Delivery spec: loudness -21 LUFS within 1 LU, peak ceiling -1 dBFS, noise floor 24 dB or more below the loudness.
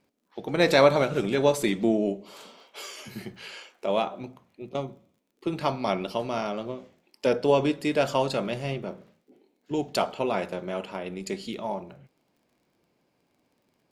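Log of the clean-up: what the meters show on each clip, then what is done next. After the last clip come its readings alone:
ticks 26/s; loudness -27.0 LUFS; peak -5.0 dBFS; loudness target -21.0 LUFS
-> de-click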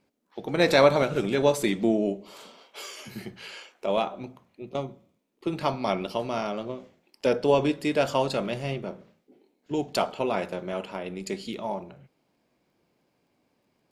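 ticks 0.14/s; loudness -27.0 LUFS; peak -5.0 dBFS; loudness target -21.0 LUFS
-> gain +6 dB; limiter -1 dBFS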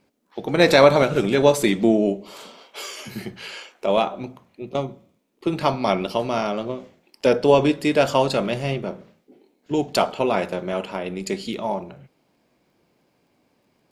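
loudness -21.0 LUFS; peak -1.0 dBFS; noise floor -67 dBFS

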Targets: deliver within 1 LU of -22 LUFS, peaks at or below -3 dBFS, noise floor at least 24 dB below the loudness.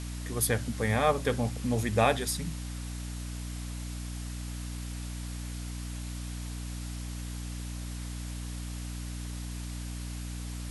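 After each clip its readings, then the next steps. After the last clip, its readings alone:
hum 60 Hz; harmonics up to 300 Hz; hum level -35 dBFS; noise floor -38 dBFS; noise floor target -58 dBFS; loudness -34.0 LUFS; peak -9.5 dBFS; loudness target -22.0 LUFS
-> de-hum 60 Hz, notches 5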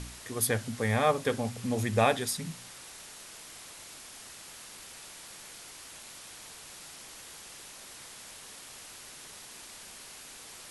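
hum none; noise floor -48 dBFS; noise floor target -59 dBFS
-> denoiser 11 dB, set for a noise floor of -48 dBFS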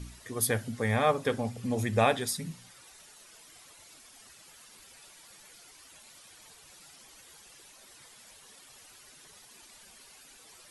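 noise floor -55 dBFS; loudness -29.5 LUFS; peak -9.5 dBFS; loudness target -22.0 LUFS
-> gain +7.5 dB; limiter -3 dBFS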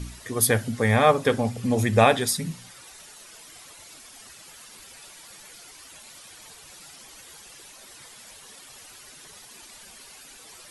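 loudness -22.0 LUFS; peak -3.0 dBFS; noise floor -48 dBFS

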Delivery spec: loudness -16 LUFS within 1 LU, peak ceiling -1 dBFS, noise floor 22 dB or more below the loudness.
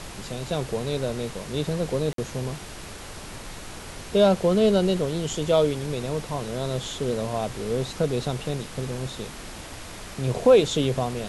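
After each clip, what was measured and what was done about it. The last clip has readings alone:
dropouts 1; longest dropout 53 ms; noise floor -40 dBFS; noise floor target -47 dBFS; loudness -25.0 LUFS; peak -7.5 dBFS; loudness target -16.0 LUFS
-> interpolate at 2.13, 53 ms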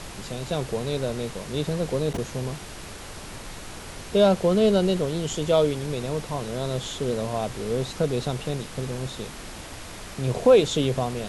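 dropouts 0; noise floor -40 dBFS; noise floor target -47 dBFS
-> noise print and reduce 7 dB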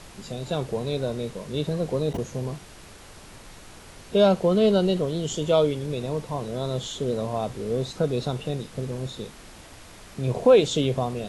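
noise floor -46 dBFS; noise floor target -47 dBFS
-> noise print and reduce 6 dB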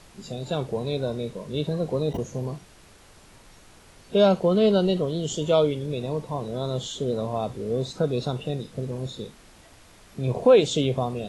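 noise floor -52 dBFS; loudness -25.0 LUFS; peak -7.5 dBFS; loudness target -16.0 LUFS
-> gain +9 dB; limiter -1 dBFS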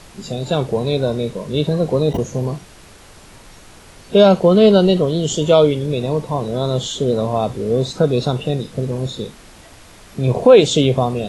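loudness -16.5 LUFS; peak -1.0 dBFS; noise floor -43 dBFS

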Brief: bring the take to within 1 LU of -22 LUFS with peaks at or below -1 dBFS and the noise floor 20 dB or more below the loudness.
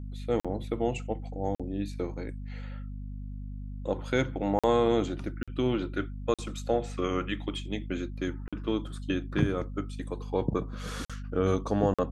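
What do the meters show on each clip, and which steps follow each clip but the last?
dropouts 8; longest dropout 46 ms; hum 50 Hz; harmonics up to 250 Hz; hum level -36 dBFS; loudness -31.5 LUFS; peak -11.0 dBFS; loudness target -22.0 LUFS
-> interpolate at 0.4/1.55/4.59/5.43/6.34/8.48/11.05/11.94, 46 ms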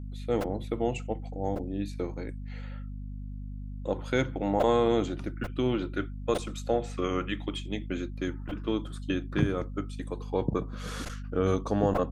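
dropouts 0; hum 50 Hz; harmonics up to 250 Hz; hum level -36 dBFS
-> notches 50/100/150/200/250 Hz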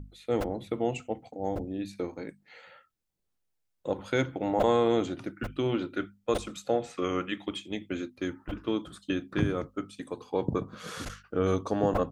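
hum none; loudness -31.5 LUFS; peak -11.5 dBFS; loudness target -22.0 LUFS
-> gain +9.5 dB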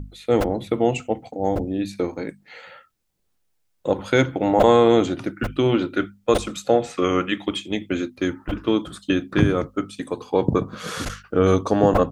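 loudness -22.0 LUFS; peak -2.0 dBFS; noise floor -69 dBFS

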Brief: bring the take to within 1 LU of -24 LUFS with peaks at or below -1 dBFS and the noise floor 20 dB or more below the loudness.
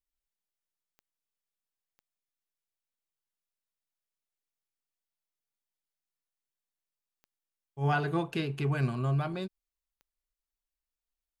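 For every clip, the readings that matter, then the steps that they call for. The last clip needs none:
clicks 4; loudness -31.0 LUFS; peak -17.5 dBFS; loudness target -24.0 LUFS
-> de-click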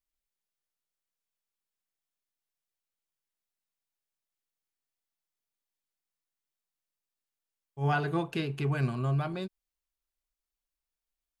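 clicks 0; loudness -31.0 LUFS; peak -17.5 dBFS; loudness target -24.0 LUFS
-> gain +7 dB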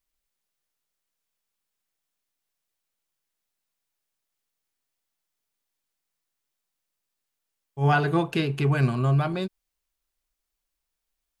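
loudness -24.0 LUFS; peak -10.5 dBFS; noise floor -83 dBFS

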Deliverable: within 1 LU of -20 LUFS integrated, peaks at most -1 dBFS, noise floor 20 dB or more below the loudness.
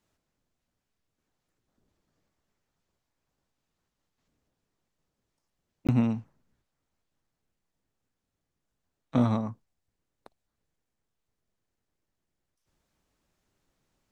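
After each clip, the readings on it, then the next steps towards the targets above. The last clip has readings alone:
dropouts 1; longest dropout 17 ms; loudness -28.5 LUFS; peak -10.5 dBFS; loudness target -20.0 LUFS
-> interpolate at 5.87, 17 ms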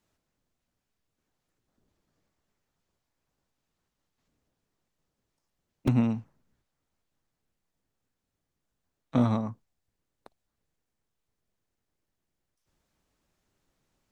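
dropouts 0; loudness -28.5 LUFS; peak -10.5 dBFS; loudness target -20.0 LUFS
-> gain +8.5 dB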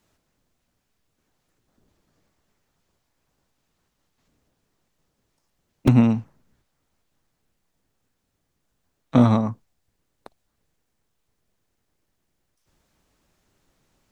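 loudness -20.0 LUFS; peak -2.0 dBFS; noise floor -75 dBFS

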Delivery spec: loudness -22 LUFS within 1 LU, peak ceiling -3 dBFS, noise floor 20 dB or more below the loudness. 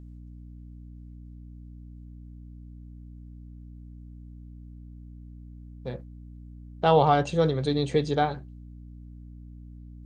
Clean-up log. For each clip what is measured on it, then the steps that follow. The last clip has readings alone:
hum 60 Hz; harmonics up to 300 Hz; hum level -41 dBFS; loudness -25.0 LUFS; peak -7.5 dBFS; loudness target -22.0 LUFS
-> notches 60/120/180/240/300 Hz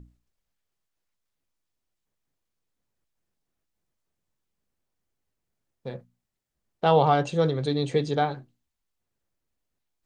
hum none; loudness -24.0 LUFS; peak -8.0 dBFS; loudness target -22.0 LUFS
-> gain +2 dB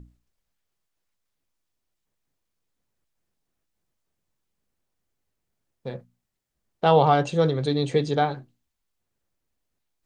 loudness -22.0 LUFS; peak -6.0 dBFS; noise floor -80 dBFS

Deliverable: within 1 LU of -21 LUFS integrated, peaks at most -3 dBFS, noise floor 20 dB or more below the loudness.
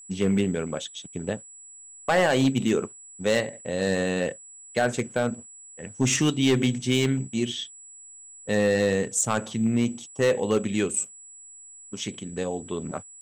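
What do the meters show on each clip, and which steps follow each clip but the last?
clipped 0.6%; flat tops at -14.5 dBFS; steady tone 7800 Hz; tone level -44 dBFS; loudness -26.0 LUFS; peak -14.5 dBFS; loudness target -21.0 LUFS
-> clip repair -14.5 dBFS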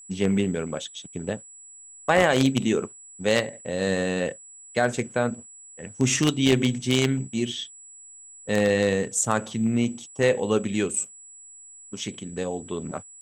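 clipped 0.0%; steady tone 7800 Hz; tone level -44 dBFS
-> notch 7800 Hz, Q 30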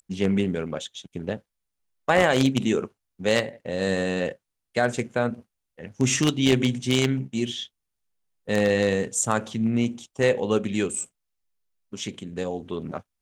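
steady tone none; loudness -25.0 LUFS; peak -5.5 dBFS; loudness target -21.0 LUFS
-> gain +4 dB; limiter -3 dBFS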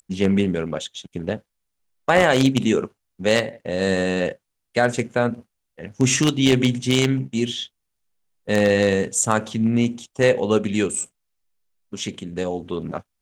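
loudness -21.5 LUFS; peak -3.0 dBFS; noise floor -78 dBFS

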